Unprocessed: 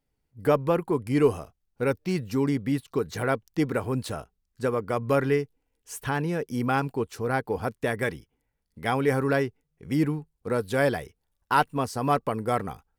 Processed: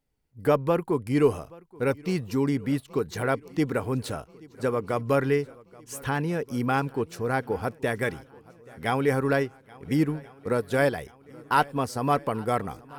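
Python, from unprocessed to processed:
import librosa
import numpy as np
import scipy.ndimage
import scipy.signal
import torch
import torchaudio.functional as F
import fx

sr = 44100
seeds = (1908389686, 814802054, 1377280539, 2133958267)

y = fx.transient(x, sr, attack_db=2, sustain_db=-5, at=(9.15, 10.98))
y = fx.echo_swing(y, sr, ms=1381, ratio=1.5, feedback_pct=49, wet_db=-23.5)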